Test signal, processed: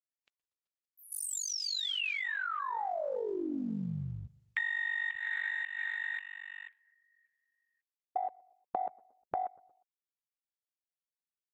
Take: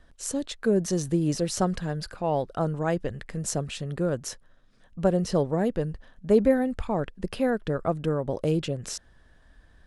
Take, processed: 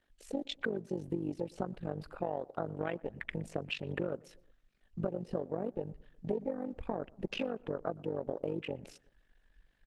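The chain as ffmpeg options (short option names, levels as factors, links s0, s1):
-filter_complex "[0:a]lowshelf=f=170:g=-11.5,acrossover=split=7700[s0][s1];[s1]acompressor=threshold=0.00501:ratio=4:attack=1:release=60[s2];[s0][s2]amix=inputs=2:normalize=0,equalizer=f=100:t=o:w=0.67:g=-9,equalizer=f=1000:t=o:w=0.67:g=-6,equalizer=f=2500:t=o:w=0.67:g=9,equalizer=f=6300:t=o:w=0.67:g=-7,tremolo=f=48:d=0.824,acompressor=threshold=0.01:ratio=12,afwtdn=0.00355,asplit=2[s3][s4];[s4]adelay=119,lowpass=f=1600:p=1,volume=0.075,asplit=2[s5][s6];[s6]adelay=119,lowpass=f=1600:p=1,volume=0.51,asplit=2[s7][s8];[s8]adelay=119,lowpass=f=1600:p=1,volume=0.51[s9];[s3][s5][s7][s9]amix=inputs=4:normalize=0,volume=2.66" -ar 48000 -c:a libopus -b:a 16k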